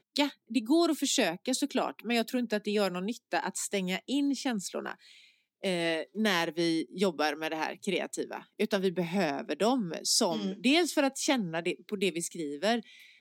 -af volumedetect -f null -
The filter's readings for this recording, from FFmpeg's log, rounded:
mean_volume: -30.7 dB
max_volume: -12.9 dB